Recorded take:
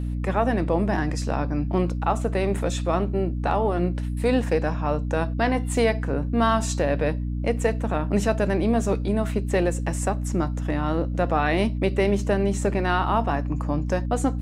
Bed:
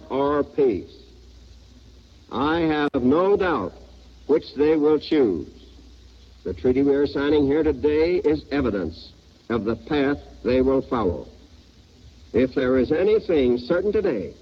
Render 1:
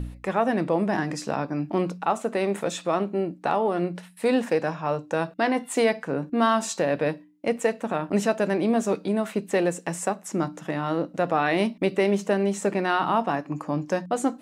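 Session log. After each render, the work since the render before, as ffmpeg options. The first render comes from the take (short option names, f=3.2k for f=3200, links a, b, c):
-af "bandreject=f=60:t=h:w=4,bandreject=f=120:t=h:w=4,bandreject=f=180:t=h:w=4,bandreject=f=240:t=h:w=4,bandreject=f=300:t=h:w=4"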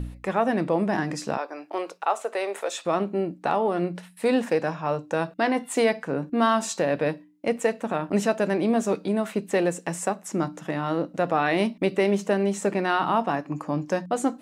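-filter_complex "[0:a]asettb=1/sr,asplit=3[a][b][c];[a]atrim=end=1.374[d];[b]atrim=start=1.37:end=2.86,asetpts=PTS-STARTPTS,afade=t=in:d=0.004:c=qsin,afade=t=out:st=1.486:d=0.004:c=qsin,highpass=f=430:w=0.5412,highpass=f=430:w=1.3066[e];[c]atrim=start=2.856[f];[d][e]acrossfade=d=0.004:c1=hsin:c2=qsin[g];[g][f]acrossfade=d=0.004:c1=qsin:c2=hsin"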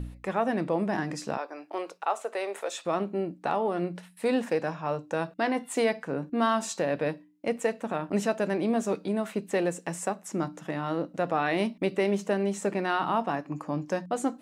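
-af "volume=-4dB"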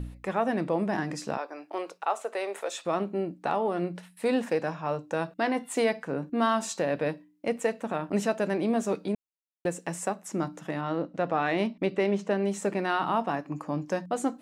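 -filter_complex "[0:a]asettb=1/sr,asplit=3[a][b][c];[a]atrim=end=10.814[d];[b]atrim=start=10.81:end=12.43,asetpts=PTS-STARTPTS,afade=t=in:d=0.004:c=qsin,afade=t=out:st=1.616:d=0.004:c=qsin,adynamicsmooth=sensitivity=1.5:basefreq=6.1k[e];[c]atrim=start=12.426[f];[d][e]acrossfade=d=0.004:c1=hsin:c2=qsin[g];[g][f]acrossfade=d=0.004:c1=qsin:c2=hsin,asplit=3[h][i][j];[h]atrim=end=9.15,asetpts=PTS-STARTPTS,afade=t=out:st=9.146:d=0.004:c=hsin[k];[i]atrim=start=9.15:end=9.65,asetpts=PTS-STARTPTS,volume=0[l];[j]atrim=start=9.65,asetpts=PTS-STARTPTS,afade=t=in:d=0.004:c=hsin[m];[k][l][m]concat=n=3:v=0:a=1"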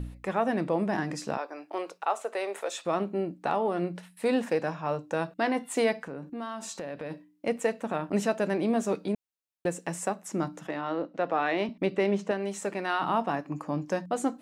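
-filter_complex "[0:a]asplit=3[a][b][c];[a]afade=t=out:st=6.06:d=0.02[d];[b]acompressor=threshold=-36dB:ratio=3:attack=3.2:release=140:knee=1:detection=peak,afade=t=in:st=6.06:d=0.02,afade=t=out:st=7.1:d=0.02[e];[c]afade=t=in:st=7.1:d=0.02[f];[d][e][f]amix=inputs=3:normalize=0,asettb=1/sr,asplit=3[g][h][i];[g]atrim=end=10.674[j];[h]atrim=start=10.67:end=11.69,asetpts=PTS-STARTPTS,afade=t=in:d=0.004:c=qsin,afade=t=out:st=1.016:d=0.004:c=qsin,acrossover=split=230 6800:gain=0.2 1 0.224[k][l][m];[k][l][m]amix=inputs=3:normalize=0[n];[i]atrim=start=11.686[o];[j][n]acrossfade=d=0.004:c1=hsin:c2=qsin[p];[p][o]acrossfade=d=0.004:c1=qsin:c2=hsin,asettb=1/sr,asplit=3[q][r][s];[q]atrim=end=12.314[t];[r]atrim=start=12.31:end=13.02,asetpts=PTS-STARTPTS,afade=t=in:d=0.004:c=qsin,afade=t=out:st=0.706:d=0.004:c=qsin,lowshelf=f=380:g=-8.5[u];[s]atrim=start=13.016[v];[t][u]acrossfade=d=0.004:c1=hsin:c2=qsin[w];[w][v]acrossfade=d=0.004:c1=qsin:c2=hsin"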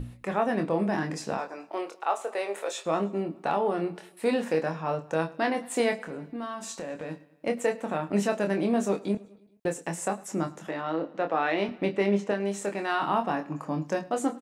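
-filter_complex "[0:a]asplit=2[a][b];[b]adelay=25,volume=-6dB[c];[a][c]amix=inputs=2:normalize=0,aecho=1:1:106|212|318|424:0.0794|0.0469|0.0277|0.0163"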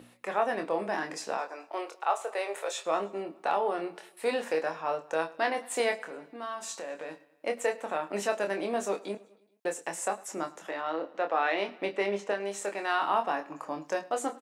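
-af "highpass=460"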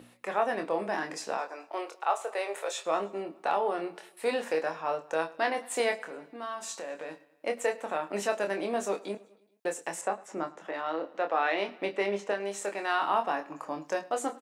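-filter_complex "[0:a]asettb=1/sr,asplit=3[a][b][c];[a]atrim=end=10.014[d];[b]atrim=start=10.01:end=10.74,asetpts=PTS-STARTPTS,afade=t=in:d=0.004:c=qsin,afade=t=out:st=0.726:d=0.004:c=qsin,aemphasis=mode=reproduction:type=75fm[e];[c]atrim=start=10.736[f];[d][e]acrossfade=d=0.004:c1=hsin:c2=qsin[g];[g][f]acrossfade=d=0.004:c1=qsin:c2=hsin"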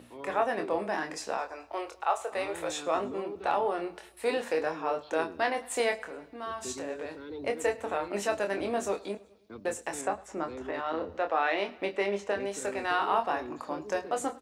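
-filter_complex "[1:a]volume=-22dB[a];[0:a][a]amix=inputs=2:normalize=0"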